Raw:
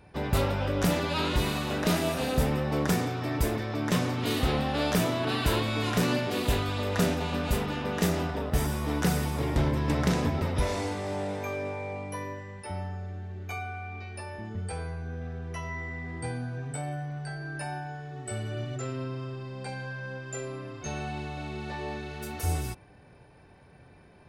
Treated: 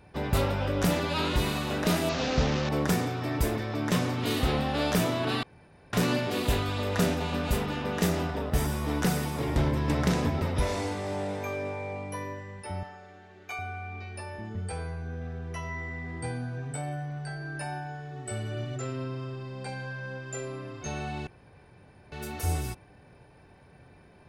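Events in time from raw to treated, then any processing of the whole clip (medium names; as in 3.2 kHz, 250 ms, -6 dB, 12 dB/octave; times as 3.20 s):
2.09–2.69 s: one-bit delta coder 32 kbps, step -26 dBFS
5.43–5.93 s: room tone
9.05–9.48 s: high-pass 100 Hz
12.83–13.59 s: frequency weighting A
21.27–22.12 s: room tone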